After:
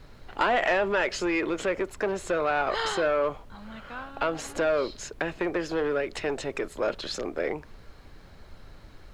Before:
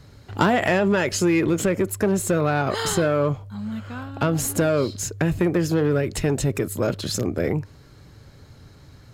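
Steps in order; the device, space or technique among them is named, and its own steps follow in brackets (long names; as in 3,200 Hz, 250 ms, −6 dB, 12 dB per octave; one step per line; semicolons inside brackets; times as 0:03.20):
aircraft cabin announcement (band-pass filter 500–3,800 Hz; soft clipping −15 dBFS, distortion −19 dB; brown noise bed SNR 17 dB)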